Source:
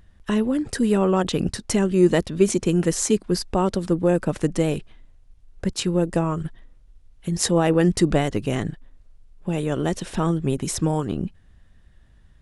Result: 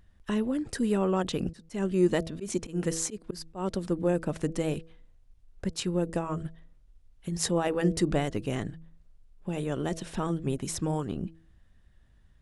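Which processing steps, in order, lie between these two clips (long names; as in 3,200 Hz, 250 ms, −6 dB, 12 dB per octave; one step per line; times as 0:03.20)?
hum removal 162.9 Hz, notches 4
0:01.53–0:03.84: volume swells 158 ms
level −7 dB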